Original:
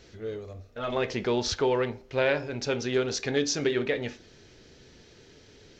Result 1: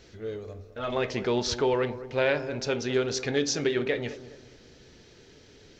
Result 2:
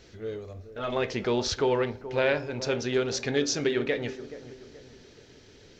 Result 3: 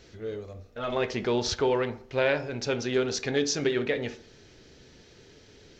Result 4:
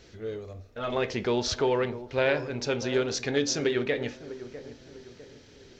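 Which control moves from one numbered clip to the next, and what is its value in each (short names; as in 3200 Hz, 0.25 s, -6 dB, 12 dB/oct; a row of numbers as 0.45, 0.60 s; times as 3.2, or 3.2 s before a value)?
dark delay, time: 206, 427, 67, 650 ms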